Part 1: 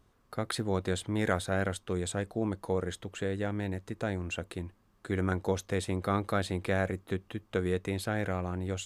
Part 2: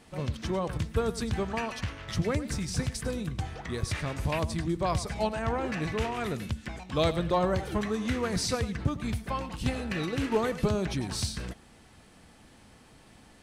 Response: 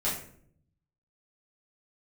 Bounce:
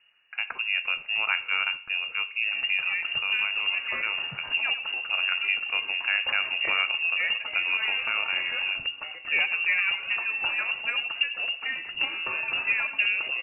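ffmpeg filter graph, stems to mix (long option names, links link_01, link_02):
-filter_complex "[0:a]volume=1.5dB,asplit=3[link_01][link_02][link_03];[link_02]volume=-18.5dB[link_04];[1:a]adelay=2350,volume=0.5dB,asplit=2[link_05][link_06];[link_06]volume=-21dB[link_07];[link_03]apad=whole_len=695790[link_08];[link_05][link_08]sidechaincompress=threshold=-32dB:ratio=8:attack=16:release=117[link_09];[2:a]atrim=start_sample=2205[link_10];[link_04][link_07]amix=inputs=2:normalize=0[link_11];[link_11][link_10]afir=irnorm=-1:irlink=0[link_12];[link_01][link_09][link_12]amix=inputs=3:normalize=0,lowpass=frequency=2500:width_type=q:width=0.5098,lowpass=frequency=2500:width_type=q:width=0.6013,lowpass=frequency=2500:width_type=q:width=0.9,lowpass=frequency=2500:width_type=q:width=2.563,afreqshift=-2900"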